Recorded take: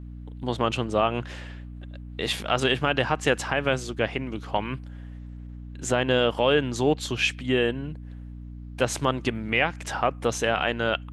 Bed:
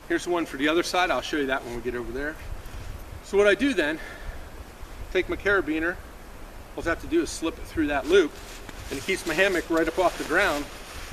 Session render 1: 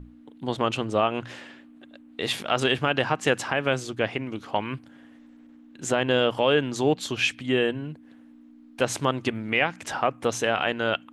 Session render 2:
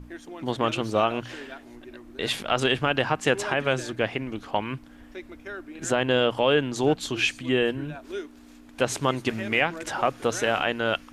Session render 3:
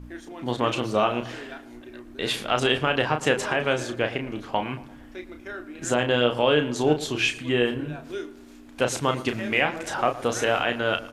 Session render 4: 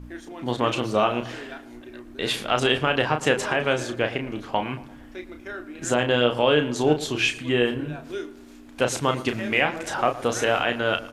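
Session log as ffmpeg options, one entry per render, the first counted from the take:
-af "bandreject=f=60:t=h:w=6,bandreject=f=120:t=h:w=6,bandreject=f=180:t=h:w=6"
-filter_complex "[1:a]volume=-15.5dB[a];[0:a][a]amix=inputs=2:normalize=0"
-filter_complex "[0:a]asplit=2[a][b];[b]adelay=33,volume=-7dB[c];[a][c]amix=inputs=2:normalize=0,asplit=2[d][e];[e]adelay=114,lowpass=f=1.7k:p=1,volume=-15.5dB,asplit=2[f][g];[g]adelay=114,lowpass=f=1.7k:p=1,volume=0.52,asplit=2[h][i];[i]adelay=114,lowpass=f=1.7k:p=1,volume=0.52,asplit=2[j][k];[k]adelay=114,lowpass=f=1.7k:p=1,volume=0.52,asplit=2[l][m];[m]adelay=114,lowpass=f=1.7k:p=1,volume=0.52[n];[d][f][h][j][l][n]amix=inputs=6:normalize=0"
-af "volume=1dB"

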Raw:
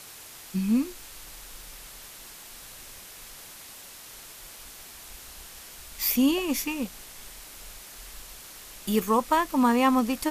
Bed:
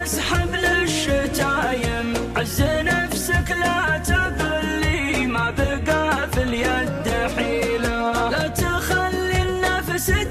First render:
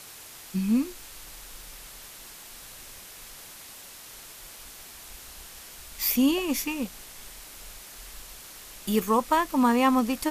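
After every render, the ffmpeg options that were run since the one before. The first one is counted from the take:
-af anull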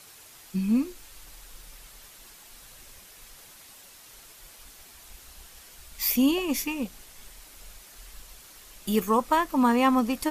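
-af "afftdn=nr=6:nf=-46"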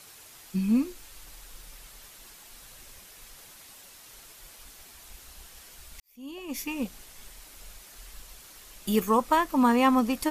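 -filter_complex "[0:a]asplit=2[a][b];[a]atrim=end=6,asetpts=PTS-STARTPTS,afade=t=out:st=5.996:d=0.004:c=hsin[c];[b]atrim=start=6,asetpts=PTS-STARTPTS,afade=t=in:d=0.82:c=qua[d];[c][d]concat=n=2:v=0:a=1"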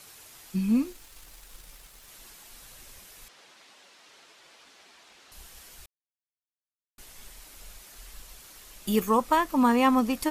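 -filter_complex "[0:a]asettb=1/sr,asplit=3[a][b][c];[a]atrim=end=0.744[d];[b]atrim=start=0.74:end=2.08,asetpts=PTS-STARTPTS,afade=t=in:d=0.004:c=qsin,afade=t=out:st=1.336:d=0.004:c=qsin,aeval=exprs='sgn(val(0))*max(abs(val(0))-0.00158,0)':c=same[e];[c]atrim=start=2.076[f];[d][e]acrossfade=d=0.004:c1=hsin:c2=qsin[g];[g][f]acrossfade=d=0.004:c1=qsin:c2=hsin,asettb=1/sr,asplit=3[h][i][j];[h]atrim=end=3.284[k];[i]atrim=start=3.28:end=5.32,asetpts=PTS-STARTPTS,afade=t=in:d=0.004:c=qsin,afade=t=out:st=2.036:d=0.004:c=qsin,highpass=270,lowpass=4.6k[l];[j]atrim=start=5.316[m];[k][l]acrossfade=d=0.004:c1=hsin:c2=qsin[n];[n][m]acrossfade=d=0.004:c1=qsin:c2=hsin,asplit=3[o][p][q];[o]atrim=end=5.86,asetpts=PTS-STARTPTS,afade=t=out:st=5.856:d=0.004:c=hsin[r];[p]atrim=start=5.86:end=6.98,asetpts=PTS-STARTPTS,volume=0[s];[q]atrim=start=6.98,asetpts=PTS-STARTPTS,afade=t=in:d=0.004:c=hsin[t];[r][s][t]concat=n=3:v=0:a=1"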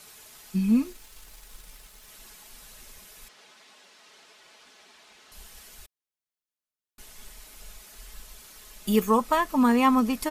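-af "aecho=1:1:4.7:0.39"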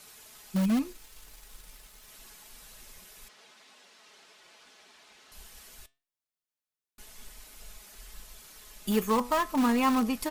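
-filter_complex "[0:a]flanger=delay=3.8:depth=4.4:regen=86:speed=0.27:shape=triangular,asplit=2[a][b];[b]aeval=exprs='(mod(14.1*val(0)+1,2)-1)/14.1':c=same,volume=-11dB[c];[a][c]amix=inputs=2:normalize=0"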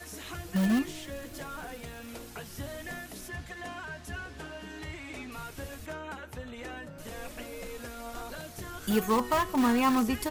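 -filter_complex "[1:a]volume=-20.5dB[a];[0:a][a]amix=inputs=2:normalize=0"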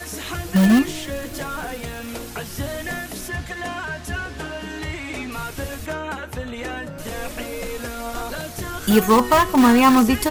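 -af "volume=11.5dB"

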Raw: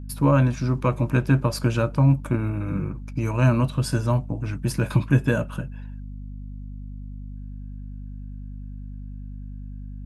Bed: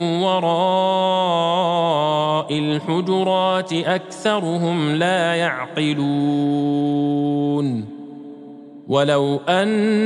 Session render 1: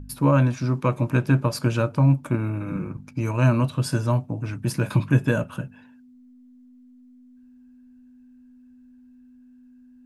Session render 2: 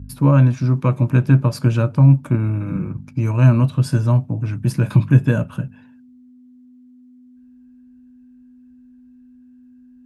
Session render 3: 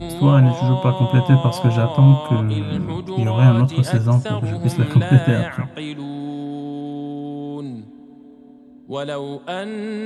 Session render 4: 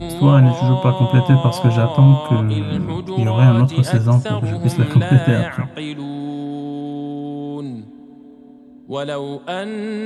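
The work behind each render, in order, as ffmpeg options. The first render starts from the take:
-af "bandreject=f=50:t=h:w=4,bandreject=f=100:t=h:w=4,bandreject=f=150:t=h:w=4,bandreject=f=200:t=h:w=4"
-af "highpass=53,bass=f=250:g=8,treble=f=4k:g=-2"
-filter_complex "[1:a]volume=-9.5dB[a];[0:a][a]amix=inputs=2:normalize=0"
-af "volume=2dB,alimiter=limit=-2dB:level=0:latency=1"

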